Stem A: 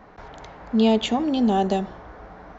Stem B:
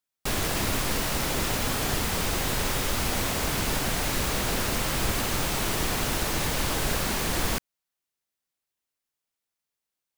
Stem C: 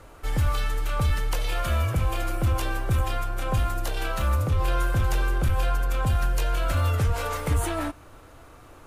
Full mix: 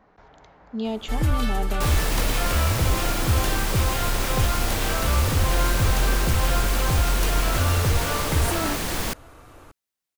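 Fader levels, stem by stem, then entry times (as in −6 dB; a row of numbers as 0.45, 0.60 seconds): −10.0, 0.0, +1.5 decibels; 0.00, 1.55, 0.85 seconds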